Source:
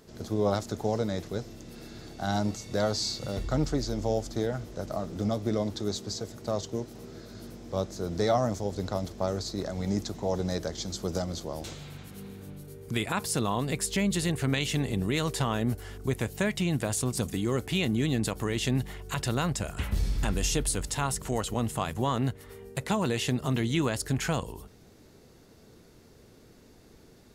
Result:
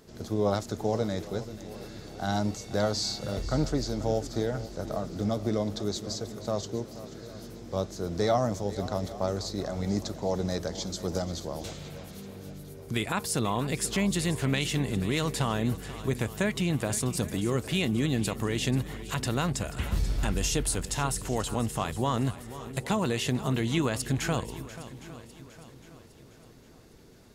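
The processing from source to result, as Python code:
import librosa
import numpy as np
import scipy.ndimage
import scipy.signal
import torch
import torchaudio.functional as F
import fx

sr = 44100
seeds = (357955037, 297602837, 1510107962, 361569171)

y = fx.echo_swing(x, sr, ms=810, ratio=1.5, feedback_pct=41, wet_db=-15.0)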